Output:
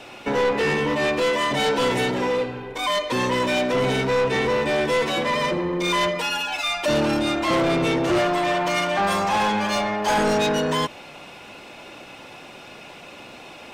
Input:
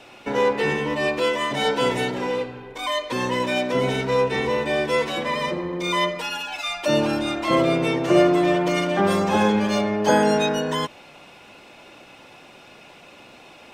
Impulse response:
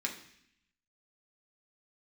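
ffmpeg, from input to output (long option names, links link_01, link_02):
-filter_complex "[0:a]asettb=1/sr,asplit=3[link_01][link_02][link_03];[link_01]atrim=end=8.184[link_04];[link_02]atrim=start=8.18:end=10.18,asetpts=PTS-STARTPTS,afade=type=in:duration=0.004:curve=qsin,afade=type=out:start_time=1.996:duration=0.004:curve=qsin,lowshelf=frequency=580:width_type=q:width=1.5:gain=-7.5[link_05];[link_03]atrim=start=10.176[link_06];[link_04][link_05]acrossfade=duration=0.004:curve1=hsin:curve2=qsin[link_07];[link_07][link_06]acrossfade=duration=0.004:curve1=qsin:curve2=hsin,asoftclip=type=tanh:threshold=-22dB,volume=5dB"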